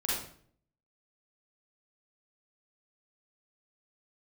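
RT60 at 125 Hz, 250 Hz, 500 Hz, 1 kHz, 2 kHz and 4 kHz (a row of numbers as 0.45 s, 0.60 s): 0.75 s, 0.70 s, 0.60 s, 0.50 s, 0.50 s, 0.45 s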